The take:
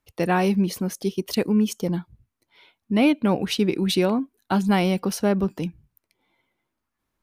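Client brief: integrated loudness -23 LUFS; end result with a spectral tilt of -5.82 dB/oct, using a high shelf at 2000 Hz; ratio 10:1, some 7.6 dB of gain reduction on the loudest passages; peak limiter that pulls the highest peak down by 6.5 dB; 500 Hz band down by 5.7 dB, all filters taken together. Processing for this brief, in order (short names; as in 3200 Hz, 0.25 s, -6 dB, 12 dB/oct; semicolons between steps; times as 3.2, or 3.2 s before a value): bell 500 Hz -7.5 dB; high shelf 2000 Hz -7 dB; compressor 10:1, threshold -25 dBFS; gain +10 dB; limiter -14 dBFS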